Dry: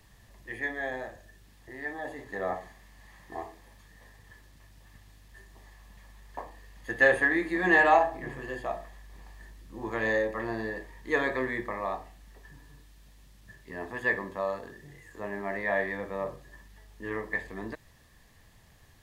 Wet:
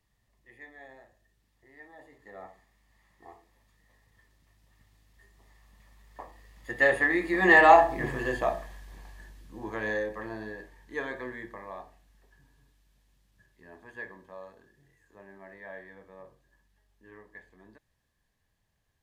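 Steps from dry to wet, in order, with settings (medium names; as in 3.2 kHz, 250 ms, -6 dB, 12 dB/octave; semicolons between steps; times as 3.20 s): Doppler pass-by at 8.14 s, 10 m/s, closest 5.4 m; trim +7 dB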